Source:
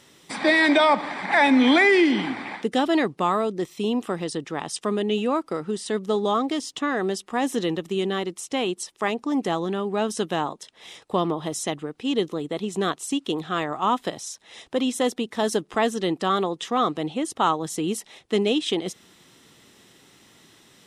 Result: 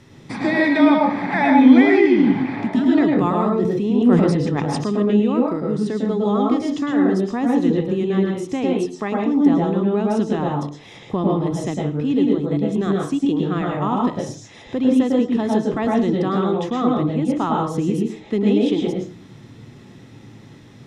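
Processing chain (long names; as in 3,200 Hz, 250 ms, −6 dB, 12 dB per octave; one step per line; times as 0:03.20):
parametric band 110 Hz +10.5 dB 0.31 octaves
0:02.53–0:02.91: healed spectral selection 370–1,200 Hz both
spectral tilt −3.5 dB per octave
downward compressor 1.5 to 1, threshold −31 dBFS, peak gain reduction 8.5 dB
convolution reverb RT60 0.40 s, pre-delay 103 ms, DRR 0 dB
0:02.93–0:05.20: level that may fall only so fast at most 26 dB per second
level +3 dB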